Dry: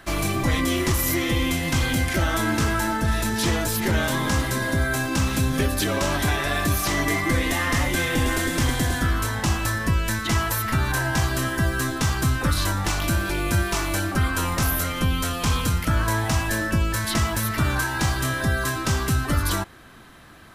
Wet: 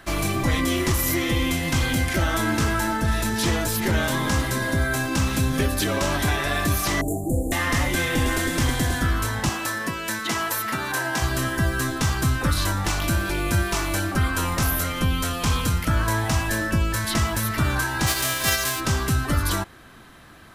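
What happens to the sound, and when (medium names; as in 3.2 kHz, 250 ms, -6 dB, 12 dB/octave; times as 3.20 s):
7.01–7.52 s: Chebyshev band-stop 770–7100 Hz, order 5
9.49–11.22 s: high-pass 240 Hz
18.06–18.79 s: formants flattened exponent 0.3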